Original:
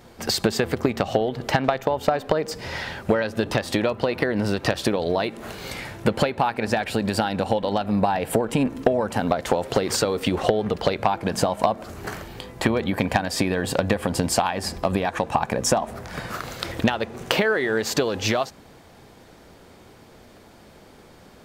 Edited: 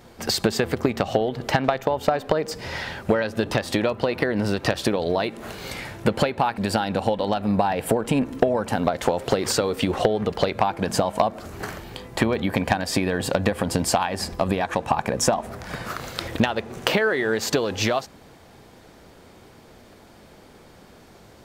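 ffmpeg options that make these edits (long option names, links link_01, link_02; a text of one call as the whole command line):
ffmpeg -i in.wav -filter_complex "[0:a]asplit=2[link_01][link_02];[link_01]atrim=end=6.582[link_03];[link_02]atrim=start=7.018[link_04];[link_03][link_04]acrossfade=duration=0.004:curve1=hsin:curve2=hsin" out.wav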